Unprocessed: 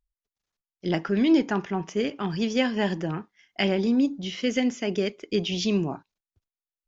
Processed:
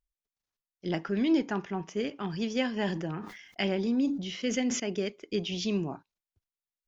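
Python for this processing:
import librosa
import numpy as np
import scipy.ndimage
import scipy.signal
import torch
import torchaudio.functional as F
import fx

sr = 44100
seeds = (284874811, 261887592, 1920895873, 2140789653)

y = fx.sustainer(x, sr, db_per_s=62.0, at=(2.69, 4.8))
y = y * 10.0 ** (-5.5 / 20.0)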